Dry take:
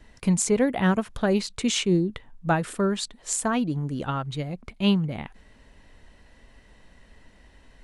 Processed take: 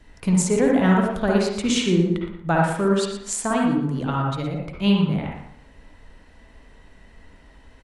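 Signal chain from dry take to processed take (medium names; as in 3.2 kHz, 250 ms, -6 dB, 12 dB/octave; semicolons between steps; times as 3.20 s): feedback delay 117 ms, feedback 20%, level -11 dB; reverberation RT60 0.60 s, pre-delay 47 ms, DRR -1 dB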